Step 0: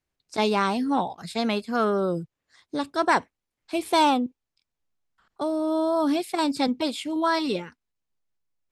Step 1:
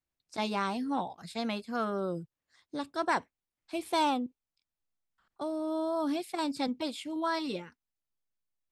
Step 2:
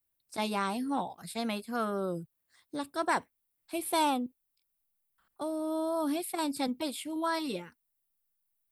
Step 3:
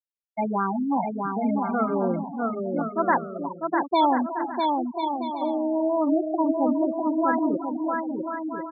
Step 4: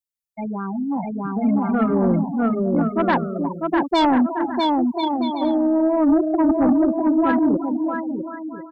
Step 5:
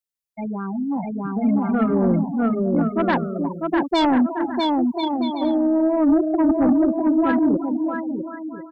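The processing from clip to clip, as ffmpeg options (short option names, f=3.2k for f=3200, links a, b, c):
-af "bandreject=f=420:w=12,volume=-8dB"
-af "aexciter=amount=6.1:drive=3.4:freq=8.8k"
-filter_complex "[0:a]asplit=2[a][b];[b]aecho=0:1:361|722|1083|1444:0.316|0.111|0.0387|0.0136[c];[a][c]amix=inputs=2:normalize=0,afftfilt=real='re*gte(hypot(re,im),0.0891)':imag='im*gte(hypot(re,im),0.0891)':win_size=1024:overlap=0.75,asplit=2[d][e];[e]aecho=0:1:650|1040|1274|1414|1499:0.631|0.398|0.251|0.158|0.1[f];[d][f]amix=inputs=2:normalize=0,volume=8dB"
-af "equalizer=f=960:w=0.31:g=-13.5,dynaudnorm=f=590:g=5:m=10.5dB,aeval=exprs='0.335*sin(PI/2*1.58*val(0)/0.335)':c=same,volume=-2dB"
-af "equalizer=f=970:w=1.5:g=-3"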